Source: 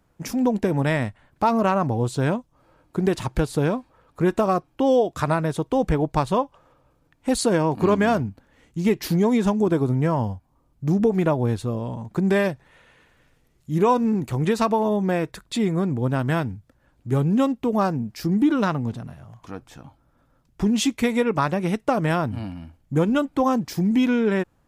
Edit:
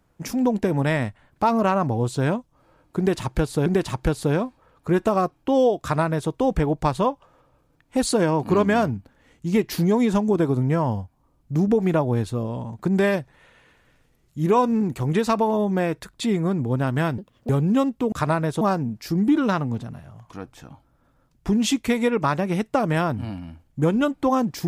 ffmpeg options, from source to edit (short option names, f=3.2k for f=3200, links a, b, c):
-filter_complex "[0:a]asplit=6[a][b][c][d][e][f];[a]atrim=end=3.662[g];[b]atrim=start=2.978:end=16.504[h];[c]atrim=start=16.5:end=17.12,asetpts=PTS-STARTPTS,asetrate=87759,aresample=44100[i];[d]atrim=start=17.116:end=17.752[j];[e]atrim=start=5.128:end=5.622[k];[f]atrim=start=17.748[l];[g][h]acrossfade=d=0.004:c1=hsin:c2=hsin[m];[m][i]acrossfade=d=0.004:c1=hsin:c2=hsin[n];[n][j]acrossfade=d=0.004:c1=hsin:c2=hsin[o];[o][k]acrossfade=d=0.004:c1=hsin:c2=hsin[p];[p][l]acrossfade=d=0.004:c1=hsin:c2=hsin"